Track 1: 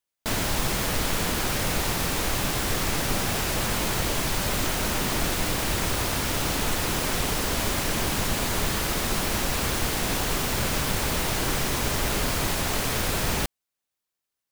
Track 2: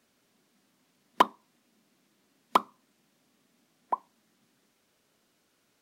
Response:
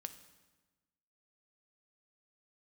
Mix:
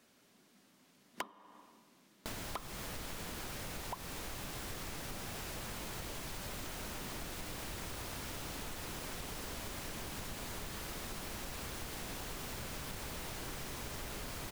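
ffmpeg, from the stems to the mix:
-filter_complex "[0:a]adelay=2000,volume=-6dB[a];[1:a]volume=0.5dB,asplit=2[b][c];[c]volume=-4.5dB[d];[2:a]atrim=start_sample=2205[e];[d][e]afir=irnorm=-1:irlink=0[f];[a][b][f]amix=inputs=3:normalize=0,asoftclip=type=tanh:threshold=-13.5dB,acompressor=threshold=-41dB:ratio=6"

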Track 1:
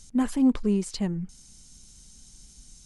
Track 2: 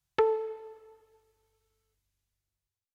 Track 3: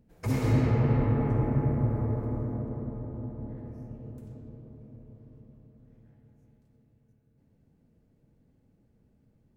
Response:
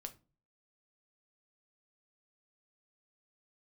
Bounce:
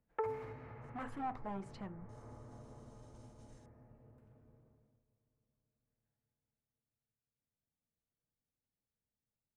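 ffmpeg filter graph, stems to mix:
-filter_complex "[0:a]aeval=exprs='0.0944*(abs(mod(val(0)/0.0944+3,4)-2)-1)':c=same,agate=range=-33dB:threshold=-45dB:ratio=3:detection=peak,adynamicequalizer=threshold=0.00398:dfrequency=1600:dqfactor=0.7:tfrequency=1600:tqfactor=0.7:attack=5:release=100:ratio=0.375:range=2.5:mode=cutabove:tftype=highshelf,adelay=800,volume=1dB,asplit=2[a][b];[b]volume=-9dB[c];[1:a]lowpass=1.9k,volume=-10dB,asplit=2[d][e];[e]volume=-5dB[f];[2:a]volume=-4.5dB,afade=t=out:st=4.61:d=0.42:silence=0.237137[g];[a][g]amix=inputs=2:normalize=0,equalizer=f=470:w=0.54:g=-8,acompressor=threshold=-36dB:ratio=12,volume=0dB[h];[3:a]atrim=start_sample=2205[i];[c][f]amix=inputs=2:normalize=0[j];[j][i]afir=irnorm=-1:irlink=0[k];[d][h][k]amix=inputs=3:normalize=0,acrossover=split=470 2200:gain=0.2 1 0.0794[l][m][n];[l][m][n]amix=inputs=3:normalize=0"

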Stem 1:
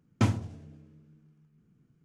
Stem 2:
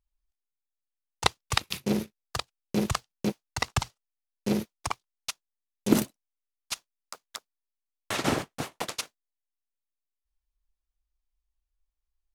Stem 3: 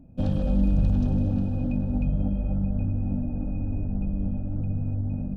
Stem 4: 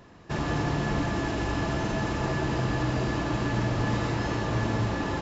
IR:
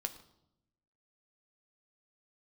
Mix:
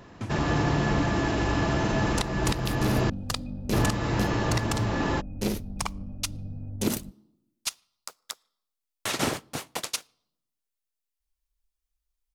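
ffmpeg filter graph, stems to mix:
-filter_complex "[0:a]volume=-11dB[a];[1:a]highshelf=f=3.3k:g=6.5,adelay=950,volume=-2.5dB,asplit=2[b][c];[c]volume=-15dB[d];[2:a]adelay=1750,volume=-9.5dB[e];[3:a]volume=3dB,asplit=3[f][g][h];[f]atrim=end=3.1,asetpts=PTS-STARTPTS,afade=t=out:st=3.096:d=0.004:c=hsin[i];[g]atrim=start=3.1:end=3.73,asetpts=PTS-STARTPTS,volume=0[j];[h]atrim=start=3.73,asetpts=PTS-STARTPTS,afade=t=in:d=0.004:c=hsin[k];[i][j][k]concat=n=3:v=0:a=1[l];[4:a]atrim=start_sample=2205[m];[d][m]afir=irnorm=-1:irlink=0[n];[a][b][e][l][n]amix=inputs=5:normalize=0,alimiter=limit=-13dB:level=0:latency=1:release=326"

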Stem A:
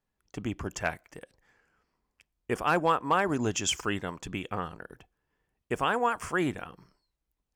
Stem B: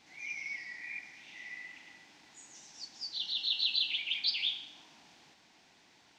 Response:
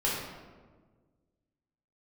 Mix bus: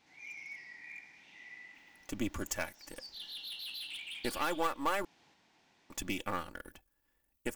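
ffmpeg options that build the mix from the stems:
-filter_complex "[0:a]aeval=exprs='if(lt(val(0),0),0.447*val(0),val(0))':c=same,aemphasis=mode=production:type=50fm,aecho=1:1:3.5:0.63,adelay=1750,volume=-1.5dB,asplit=3[a][b][c];[a]atrim=end=5.05,asetpts=PTS-STARTPTS,afade=t=out:st=5.046:d=0.004:c=hsin[d];[b]atrim=start=5.05:end=5.9,asetpts=PTS-STARTPTS,volume=0[e];[c]atrim=start=5.9,asetpts=PTS-STARTPTS,afade=t=in:d=0.004:c=hsin[f];[d][e][f]concat=n=3:v=0:a=1[g];[1:a]equalizer=f=5.2k:w=0.67:g=-4.5,asoftclip=type=hard:threshold=-36dB,volume=-5.5dB,asplit=2[h][i];[i]volume=-17dB[j];[2:a]atrim=start_sample=2205[k];[j][k]afir=irnorm=-1:irlink=0[l];[g][h][l]amix=inputs=3:normalize=0,alimiter=limit=-19.5dB:level=0:latency=1:release=346"

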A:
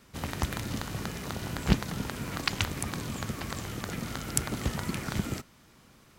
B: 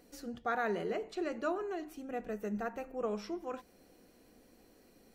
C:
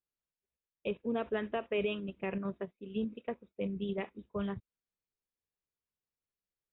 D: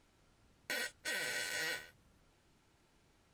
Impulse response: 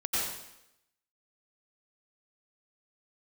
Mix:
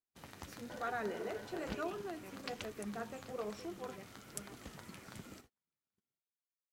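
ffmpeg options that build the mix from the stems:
-filter_complex "[0:a]volume=-12.5dB,asplit=2[a][b];[b]volume=-17.5dB[c];[1:a]adelay=350,volume=-1.5dB[d];[2:a]volume=-13.5dB[e];[3:a]lowpass=f=1.1k:w=0.5412,lowpass=f=1.1k:w=1.3066,volume=2dB[f];[c]aecho=0:1:783:1[g];[a][d][e][f][g]amix=inputs=5:normalize=0,agate=range=-31dB:threshold=-52dB:ratio=16:detection=peak,lowshelf=f=130:g=-9.5,flanger=delay=2.6:depth=8.2:regen=-44:speed=1.1:shape=sinusoidal"

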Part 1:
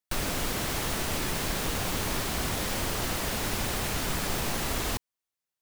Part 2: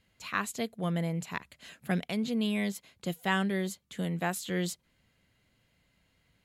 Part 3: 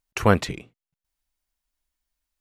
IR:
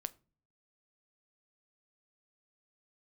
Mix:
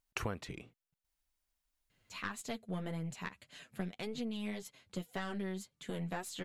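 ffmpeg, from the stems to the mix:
-filter_complex "[1:a]lowpass=11k,aeval=exprs='(tanh(8.91*val(0)+0.65)-tanh(0.65))/8.91':c=same,flanger=delay=6.7:depth=4:regen=15:speed=1.8:shape=sinusoidal,adelay=1900,volume=3dB[a];[2:a]volume=-3dB[b];[a][b]amix=inputs=2:normalize=0,acompressor=threshold=-35dB:ratio=12"

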